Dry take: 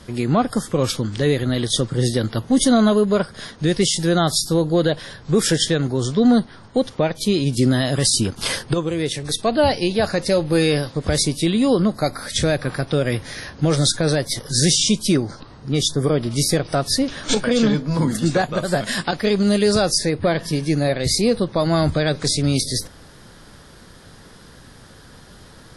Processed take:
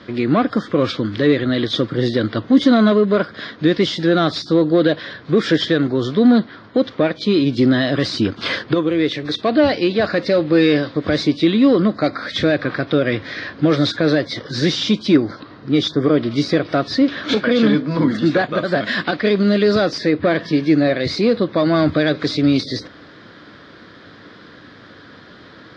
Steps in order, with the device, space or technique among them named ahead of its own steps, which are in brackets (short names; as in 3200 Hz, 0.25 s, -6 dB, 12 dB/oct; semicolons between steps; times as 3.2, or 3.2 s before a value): overdrive pedal into a guitar cabinet (overdrive pedal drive 13 dB, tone 4500 Hz, clips at -5.5 dBFS; speaker cabinet 87–4000 Hz, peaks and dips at 100 Hz +5 dB, 210 Hz +3 dB, 300 Hz +9 dB, 850 Hz -9 dB, 2800 Hz -5 dB)